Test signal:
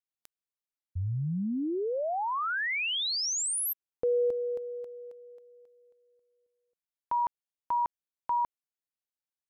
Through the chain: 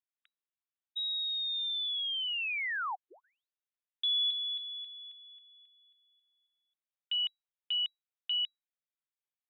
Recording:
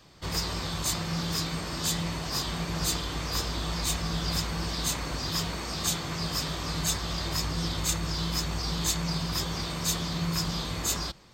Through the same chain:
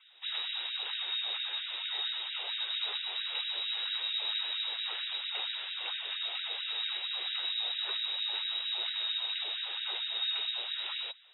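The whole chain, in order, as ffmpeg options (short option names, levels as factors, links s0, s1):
-af "lowpass=f=3300:t=q:w=0.5098,lowpass=f=3300:t=q:w=0.6013,lowpass=f=3300:t=q:w=0.9,lowpass=f=3300:t=q:w=2.563,afreqshift=-3900,afftfilt=real='re*gte(b*sr/1024,330*pow(1500/330,0.5+0.5*sin(2*PI*4.4*pts/sr)))':imag='im*gte(b*sr/1024,330*pow(1500/330,0.5+0.5*sin(2*PI*4.4*pts/sr)))':win_size=1024:overlap=0.75,volume=0.668"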